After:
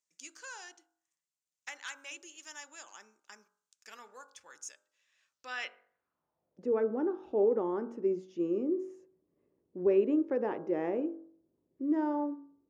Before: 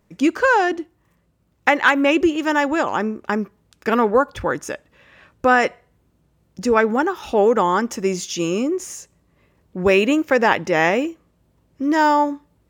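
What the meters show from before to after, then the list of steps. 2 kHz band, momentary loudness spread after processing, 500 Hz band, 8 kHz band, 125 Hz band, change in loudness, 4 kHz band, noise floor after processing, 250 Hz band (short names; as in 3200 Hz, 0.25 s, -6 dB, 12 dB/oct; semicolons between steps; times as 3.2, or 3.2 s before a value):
-25.5 dB, 21 LU, -13.0 dB, -15.5 dB, -20.0 dB, -13.5 dB, -20.5 dB, under -85 dBFS, -13.5 dB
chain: band-pass sweep 6800 Hz -> 360 Hz, 5.28–6.74; de-hum 46.77 Hz, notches 35; gain -7 dB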